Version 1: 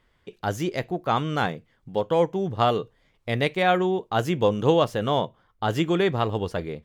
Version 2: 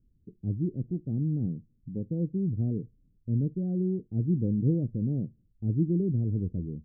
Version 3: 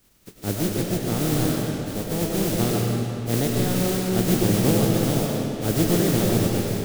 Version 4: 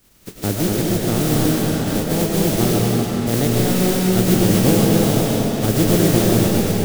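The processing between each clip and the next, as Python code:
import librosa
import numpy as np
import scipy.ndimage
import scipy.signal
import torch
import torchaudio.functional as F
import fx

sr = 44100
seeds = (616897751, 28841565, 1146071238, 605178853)

y1 = scipy.signal.sosfilt(scipy.signal.cheby2(4, 60, 930.0, 'lowpass', fs=sr, output='sos'), x)
y1 = F.gain(torch.from_numpy(y1), 2.0).numpy()
y2 = fx.spec_flatten(y1, sr, power=0.32)
y2 = fx.rev_freeverb(y2, sr, rt60_s=2.8, hf_ratio=0.8, predelay_ms=60, drr_db=-1.5)
y2 = F.gain(torch.from_numpy(y2), 4.0).numpy()
y3 = fx.recorder_agc(y2, sr, target_db=-14.0, rise_db_per_s=17.0, max_gain_db=30)
y3 = y3 + 10.0 ** (-5.0 / 20.0) * np.pad(y3, (int(241 * sr / 1000.0), 0))[:len(y3)]
y3 = F.gain(torch.from_numpy(y3), 4.0).numpy()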